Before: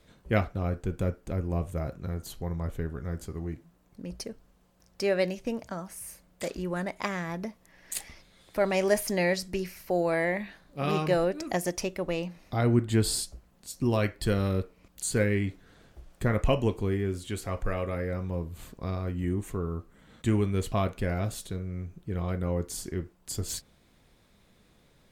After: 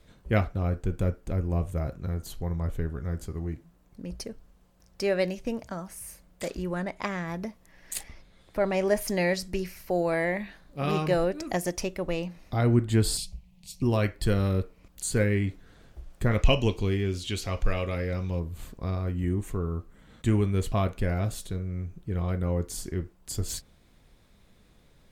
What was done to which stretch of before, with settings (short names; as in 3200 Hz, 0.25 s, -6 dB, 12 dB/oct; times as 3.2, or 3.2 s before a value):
6.75–7.28 high shelf 7800 Hz -9.5 dB
8.03–9.01 high shelf 2900 Hz -7.5 dB
13.17–13.82 EQ curve 110 Hz 0 dB, 180 Hz +9 dB, 260 Hz -15 dB, 880 Hz -6 dB, 1500 Hz -20 dB, 2400 Hz +6 dB, 7500 Hz -4 dB
16.31–18.4 band shelf 3900 Hz +9.5 dB
whole clip: low shelf 73 Hz +8.5 dB